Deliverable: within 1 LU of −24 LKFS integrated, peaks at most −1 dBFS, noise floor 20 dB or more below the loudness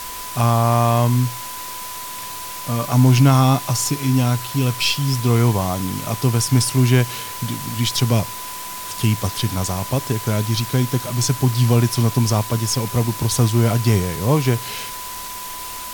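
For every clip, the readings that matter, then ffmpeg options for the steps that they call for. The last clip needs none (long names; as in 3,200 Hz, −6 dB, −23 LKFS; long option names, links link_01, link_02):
interfering tone 1,000 Hz; level of the tone −33 dBFS; background noise floor −31 dBFS; target noise floor −40 dBFS; integrated loudness −19.5 LKFS; sample peak −4.0 dBFS; target loudness −24.0 LKFS
→ -af "bandreject=frequency=1000:width=30"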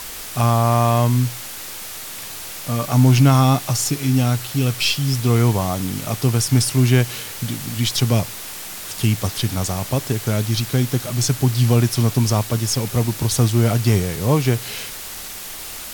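interfering tone none found; background noise floor −33 dBFS; target noise floor −39 dBFS
→ -af "afftdn=noise_reduction=6:noise_floor=-33"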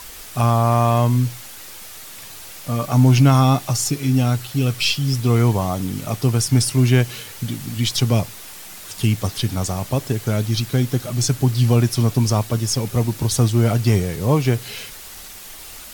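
background noise floor −38 dBFS; target noise floor −39 dBFS
→ -af "afftdn=noise_reduction=6:noise_floor=-38"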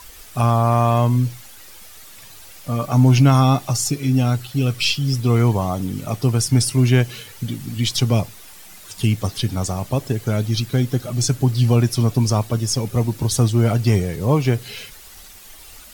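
background noise floor −42 dBFS; integrated loudness −19.0 LKFS; sample peak −4.5 dBFS; target loudness −24.0 LKFS
→ -af "volume=-5dB"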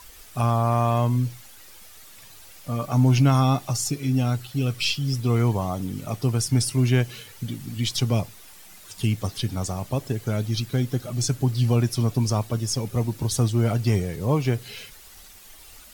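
integrated loudness −24.0 LKFS; sample peak −9.5 dBFS; background noise floor −47 dBFS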